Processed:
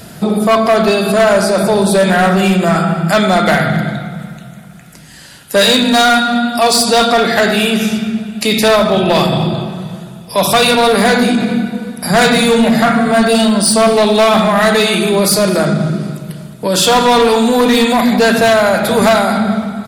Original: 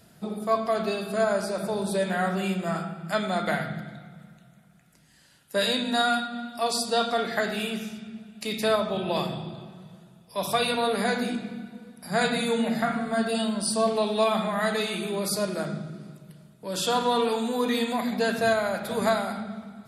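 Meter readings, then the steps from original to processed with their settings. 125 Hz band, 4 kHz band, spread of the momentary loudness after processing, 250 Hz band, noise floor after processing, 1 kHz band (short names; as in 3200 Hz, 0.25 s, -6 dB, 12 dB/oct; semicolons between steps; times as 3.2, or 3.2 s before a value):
+18.0 dB, +16.0 dB, 9 LU, +16.5 dB, -35 dBFS, +15.0 dB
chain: overloaded stage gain 23 dB; on a send: echo 0.217 s -21 dB; on the sum: maximiser +26.5 dB; gain -4.5 dB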